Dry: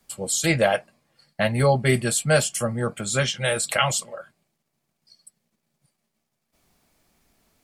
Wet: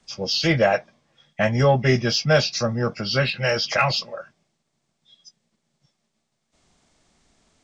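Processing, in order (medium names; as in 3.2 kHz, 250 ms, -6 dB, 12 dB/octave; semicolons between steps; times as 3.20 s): knee-point frequency compression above 1.9 kHz 1.5:1; in parallel at -9 dB: saturation -18.5 dBFS, distortion -11 dB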